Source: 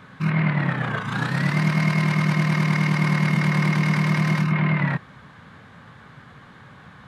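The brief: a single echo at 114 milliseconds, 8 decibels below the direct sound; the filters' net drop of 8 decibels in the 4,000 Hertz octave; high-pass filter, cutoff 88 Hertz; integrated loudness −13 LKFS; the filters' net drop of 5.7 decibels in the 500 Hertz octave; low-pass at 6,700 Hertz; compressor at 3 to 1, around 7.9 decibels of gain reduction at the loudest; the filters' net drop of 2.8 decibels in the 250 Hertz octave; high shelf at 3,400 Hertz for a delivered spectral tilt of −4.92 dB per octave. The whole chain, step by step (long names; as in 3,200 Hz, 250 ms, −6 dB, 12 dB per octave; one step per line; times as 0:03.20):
high-pass filter 88 Hz
low-pass filter 6,700 Hz
parametric band 250 Hz −4 dB
parametric band 500 Hz −6.5 dB
high-shelf EQ 3,400 Hz −7 dB
parametric band 4,000 Hz −5.5 dB
downward compressor 3 to 1, threshold −30 dBFS
single-tap delay 114 ms −8 dB
level +18.5 dB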